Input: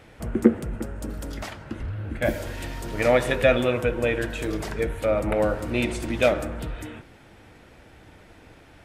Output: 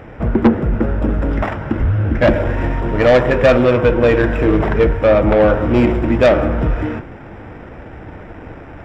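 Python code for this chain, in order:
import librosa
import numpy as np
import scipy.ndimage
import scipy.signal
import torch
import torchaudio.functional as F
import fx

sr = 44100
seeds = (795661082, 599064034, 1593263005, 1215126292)

p1 = scipy.signal.medfilt(x, 15)
p2 = fx.rider(p1, sr, range_db=4, speed_s=0.5)
p3 = p1 + (p2 * librosa.db_to_amplitude(2.0))
p4 = scipy.signal.savgol_filter(p3, 25, 4, mode='constant')
p5 = 10.0 ** (-12.5 / 20.0) * np.tanh(p4 / 10.0 ** (-12.5 / 20.0))
p6 = fx.end_taper(p5, sr, db_per_s=240.0)
y = p6 * librosa.db_to_amplitude(7.5)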